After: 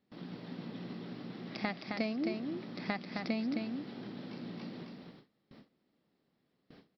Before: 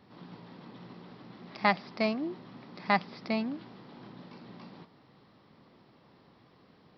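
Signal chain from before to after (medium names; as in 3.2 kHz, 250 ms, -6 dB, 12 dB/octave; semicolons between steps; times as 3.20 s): compression 5:1, threshold -35 dBFS, peak gain reduction 15 dB; fifteen-band graphic EQ 100 Hz -7 dB, 250 Hz +3 dB, 1 kHz -9 dB; delay 264 ms -4.5 dB; gate with hold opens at -47 dBFS; trim +3 dB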